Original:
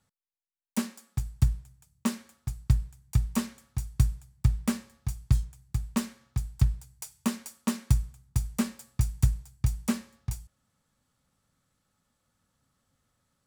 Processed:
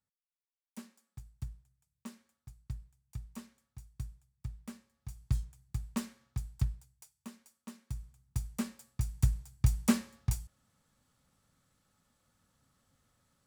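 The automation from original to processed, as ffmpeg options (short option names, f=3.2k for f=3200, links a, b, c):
-af "volume=13.5dB,afade=t=in:st=4.93:d=0.46:silence=0.281838,afade=t=out:st=6.52:d=0.6:silence=0.251189,afade=t=in:st=7.88:d=0.49:silence=0.266073,afade=t=in:st=9.02:d=0.91:silence=0.354813"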